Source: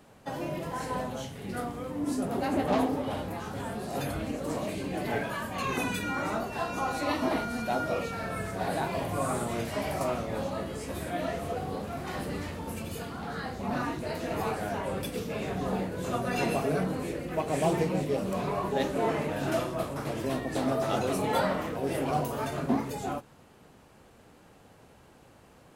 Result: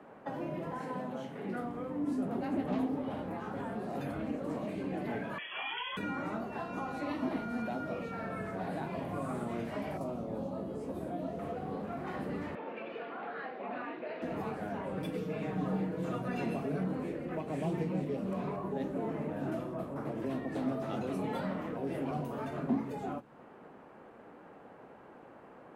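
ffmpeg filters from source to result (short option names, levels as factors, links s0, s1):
-filter_complex "[0:a]asettb=1/sr,asplit=3[s0][s1][s2];[s0]atrim=end=0.794[s3];[s1]atrim=start=0.79:end=1.61,asetpts=PTS-STARTPTS,afade=t=in:d=0.004:c=qsin,afade=t=out:st=0.816:d=0.004:c=qsin,highpass=f=130:w=0.5412,highpass=f=130:w=1.3066[s4];[s2]atrim=start=1.606[s5];[s3][s4]acrossfade=d=0.004:c1=hsin:c2=qsin[s6];[s6][s5]acrossfade=d=0.004:c1=qsin:c2=hsin,asettb=1/sr,asplit=3[s7][s8][s9];[s7]atrim=end=5.384[s10];[s8]atrim=start=5.38:end=5.97,asetpts=PTS-STARTPTS,afade=t=in:d=0.004:c=qsin,afade=t=out:st=0.586:d=0.004:c=qsin,lowpass=f=3000:t=q:w=0.5098,lowpass=f=3000:t=q:w=0.6013,lowpass=f=3000:t=q:w=0.9,lowpass=f=3000:t=q:w=2.563,afreqshift=-3500[s11];[s9]atrim=start=5.966[s12];[s10][s11]acrossfade=d=0.004:c1=hsin:c2=qsin[s13];[s13][s12]acrossfade=d=0.004:c1=qsin:c2=hsin,asettb=1/sr,asplit=3[s14][s15][s16];[s14]atrim=end=9.974[s17];[s15]atrim=start=9.97:end=11.39,asetpts=PTS-STARTPTS,afade=t=in:d=0.004:c=qsin,afade=t=out:st=1.416:d=0.004:c=qsin,equalizer=f=1900:t=o:w=1.4:g=-14[s18];[s16]atrim=start=11.386[s19];[s17][s18]acrossfade=d=0.004:c1=hsin:c2=qsin[s20];[s20][s19]acrossfade=d=0.004:c1=qsin:c2=hsin,asettb=1/sr,asplit=3[s21][s22][s23];[s21]atrim=end=12.554[s24];[s22]atrim=start=12.55:end=14.22,asetpts=PTS-STARTPTS,afade=t=in:d=0.004:c=qsin,afade=t=out:st=1.666:d=0.004:c=qsin,highpass=430,equalizer=f=920:t=q:w=4:g=-5,equalizer=f=1300:t=q:w=4:g=-3,equalizer=f=2500:t=q:w=4:g=5,lowpass=f=3800:w=0.5412,lowpass=f=3800:w=1.3066[s25];[s23]atrim=start=14.216[s26];[s24][s25]acrossfade=d=0.004:c1=hsin:c2=qsin[s27];[s27][s26]acrossfade=d=0.004:c1=qsin:c2=hsin,asettb=1/sr,asplit=3[s28][s29][s30];[s28]atrim=end=14.974[s31];[s29]atrim=start=14.97:end=16.28,asetpts=PTS-STARTPTS,afade=t=in:d=0.004:c=qsin,afade=t=out:st=1.306:d=0.004:c=qsin,aecho=1:1:6.4:0.78,atrim=end_sample=57771[s32];[s30]atrim=start=16.276[s33];[s31][s32]acrossfade=d=0.004:c1=hsin:c2=qsin[s34];[s34][s33]acrossfade=d=0.004:c1=qsin:c2=hsin,asettb=1/sr,asplit=3[s35][s36][s37];[s35]atrim=end=18.564[s38];[s36]atrim=start=18.56:end=20.22,asetpts=PTS-STARTPTS,afade=t=in:d=0.004:c=qsin,afade=t=out:st=1.656:d=0.004:c=qsin,equalizer=f=3200:t=o:w=2.5:g=-6[s39];[s37]atrim=start=20.216[s40];[s38][s39]acrossfade=d=0.004:c1=hsin:c2=qsin[s41];[s41][s40]acrossfade=d=0.004:c1=qsin:c2=hsin,acrossover=split=190 2100:gain=0.126 1 0.0631[s42][s43][s44];[s42][s43][s44]amix=inputs=3:normalize=0,acrossover=split=230|3000[s45][s46][s47];[s46]acompressor=threshold=0.00631:ratio=6[s48];[s45][s48][s47]amix=inputs=3:normalize=0,volume=1.78"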